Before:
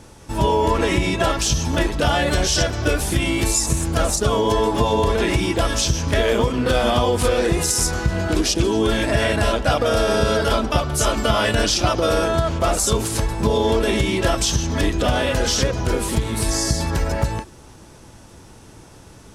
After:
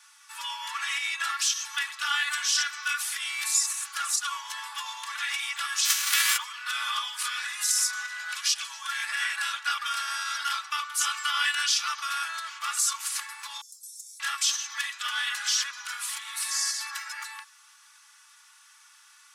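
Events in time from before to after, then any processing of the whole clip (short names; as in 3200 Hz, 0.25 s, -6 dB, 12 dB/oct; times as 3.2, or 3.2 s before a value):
5.84–6.36 spectral whitening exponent 0.3
13.61–14.2 inverse Chebyshev band-stop 470–3000 Hz, stop band 50 dB
whole clip: steep high-pass 1100 Hz 48 dB/oct; comb 3.5 ms, depth 71%; gain -5.5 dB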